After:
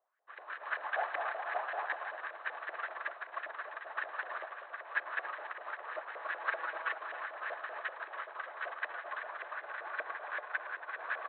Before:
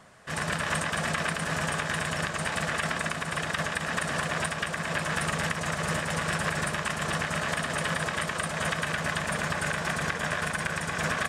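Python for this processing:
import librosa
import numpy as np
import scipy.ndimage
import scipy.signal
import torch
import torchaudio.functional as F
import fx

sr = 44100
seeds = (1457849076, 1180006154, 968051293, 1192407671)

p1 = fx.peak_eq(x, sr, hz=760.0, db=10.0, octaves=0.44, at=(0.84, 1.96))
p2 = fx.comb(p1, sr, ms=6.2, depth=0.91, at=(6.39, 6.98))
p3 = 10.0 ** (-28.0 / 20.0) * (np.abs((p2 / 10.0 ** (-28.0 / 20.0) + 3.0) % 4.0 - 2.0) - 1.0)
p4 = p2 + (p3 * librosa.db_to_amplitude(-4.0))
p5 = fx.filter_lfo_bandpass(p4, sr, shape='saw_up', hz=5.2, low_hz=590.0, high_hz=1900.0, q=3.2)
p6 = fx.brickwall_bandpass(p5, sr, low_hz=290.0, high_hz=4200.0)
p7 = p6 + 10.0 ** (-6.5 / 20.0) * np.pad(p6, (int(280 * sr / 1000.0), 0))[:len(p6)]
y = fx.upward_expand(p7, sr, threshold_db=-46.0, expansion=2.5)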